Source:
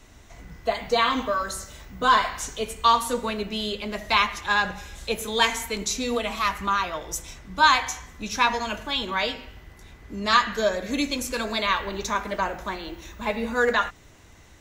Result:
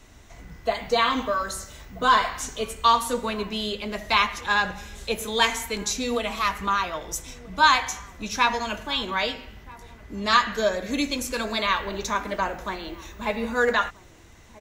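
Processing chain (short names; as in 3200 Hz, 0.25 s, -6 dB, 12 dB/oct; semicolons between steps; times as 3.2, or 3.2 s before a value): outdoor echo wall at 220 m, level -21 dB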